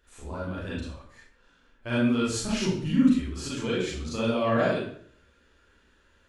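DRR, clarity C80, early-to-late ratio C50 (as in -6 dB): -8.5 dB, 5.5 dB, 0.0 dB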